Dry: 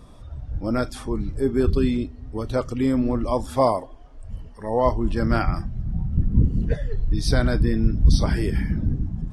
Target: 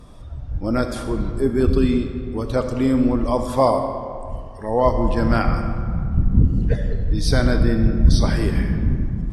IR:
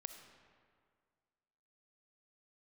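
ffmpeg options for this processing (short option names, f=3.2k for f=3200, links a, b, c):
-filter_complex "[1:a]atrim=start_sample=2205,asetrate=37926,aresample=44100[a];[0:a][a]afir=irnorm=-1:irlink=0,volume=6.5dB"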